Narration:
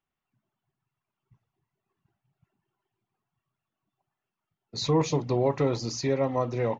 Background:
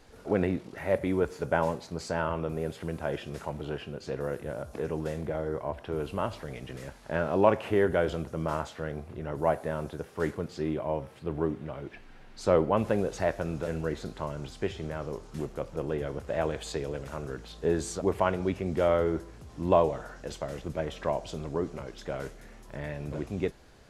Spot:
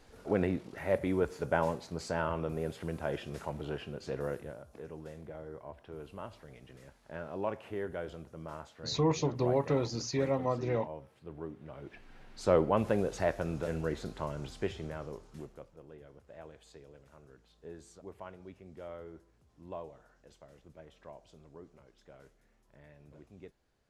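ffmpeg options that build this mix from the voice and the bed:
-filter_complex "[0:a]adelay=4100,volume=0.596[s0];[1:a]volume=2.37,afade=t=out:st=4.3:d=0.3:silence=0.316228,afade=t=in:st=11.54:d=0.66:silence=0.298538,afade=t=out:st=14.55:d=1.21:silence=0.125893[s1];[s0][s1]amix=inputs=2:normalize=0"

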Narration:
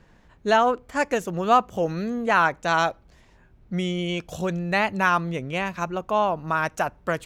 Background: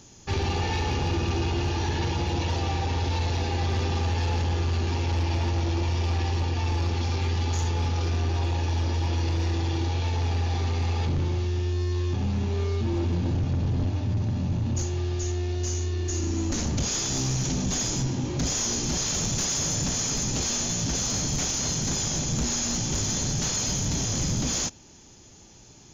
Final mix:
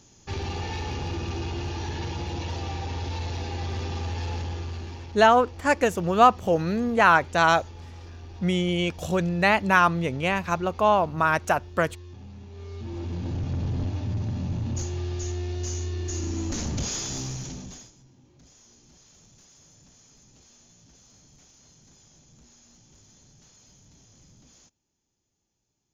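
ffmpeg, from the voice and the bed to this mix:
-filter_complex "[0:a]adelay=4700,volume=1.26[s0];[1:a]volume=2.99,afade=t=out:st=4.33:d=0.85:silence=0.251189,afade=t=in:st=12.51:d=1.08:silence=0.188365,afade=t=out:st=16.87:d=1.05:silence=0.0473151[s1];[s0][s1]amix=inputs=2:normalize=0"

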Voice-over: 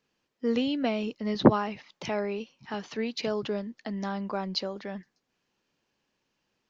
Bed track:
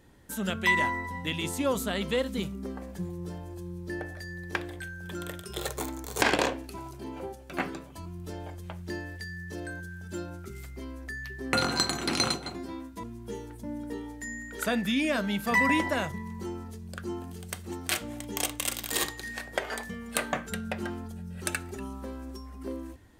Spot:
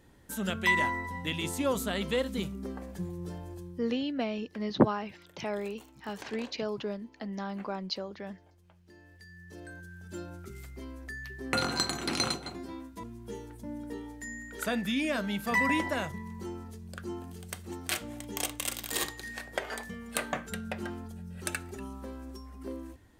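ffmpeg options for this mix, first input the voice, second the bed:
-filter_complex "[0:a]adelay=3350,volume=0.631[s0];[1:a]volume=6.68,afade=t=out:st=3.52:d=0.42:silence=0.105925,afade=t=in:st=8.93:d=1.49:silence=0.125893[s1];[s0][s1]amix=inputs=2:normalize=0"

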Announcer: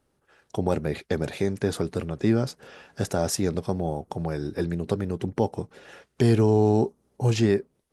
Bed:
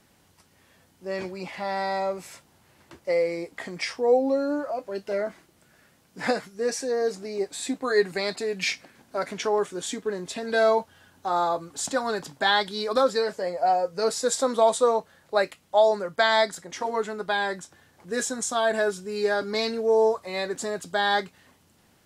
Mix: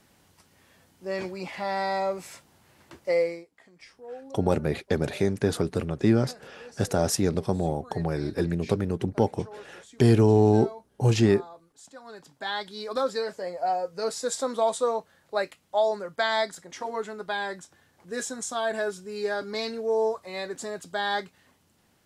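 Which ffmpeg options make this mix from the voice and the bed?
-filter_complex "[0:a]adelay=3800,volume=1.12[s0];[1:a]volume=6.31,afade=t=out:st=3.21:d=0.24:silence=0.0944061,afade=t=in:st=11.97:d=1.18:silence=0.158489[s1];[s0][s1]amix=inputs=2:normalize=0"

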